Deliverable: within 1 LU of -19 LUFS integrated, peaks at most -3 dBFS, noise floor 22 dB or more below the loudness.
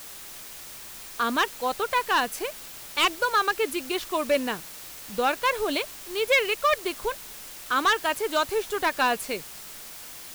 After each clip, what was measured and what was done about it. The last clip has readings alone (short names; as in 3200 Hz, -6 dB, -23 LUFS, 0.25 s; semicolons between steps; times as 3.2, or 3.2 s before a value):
clipped 0.7%; flat tops at -15.5 dBFS; noise floor -42 dBFS; noise floor target -48 dBFS; loudness -25.5 LUFS; peak -15.5 dBFS; loudness target -19.0 LUFS
-> clip repair -15.5 dBFS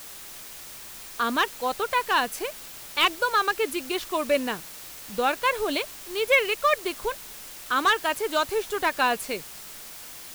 clipped 0.0%; noise floor -42 dBFS; noise floor target -48 dBFS
-> denoiser 6 dB, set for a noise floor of -42 dBFS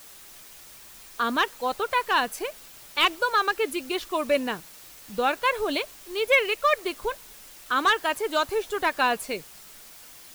noise floor -47 dBFS; noise floor target -48 dBFS
-> denoiser 6 dB, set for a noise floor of -47 dBFS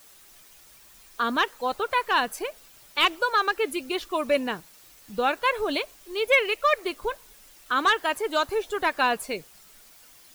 noise floor -53 dBFS; loudness -25.5 LUFS; peak -7.0 dBFS; loudness target -19.0 LUFS
-> gain +6.5 dB; limiter -3 dBFS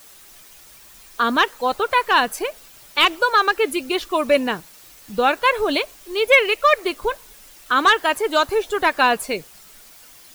loudness -19.0 LUFS; peak -3.0 dBFS; noise floor -46 dBFS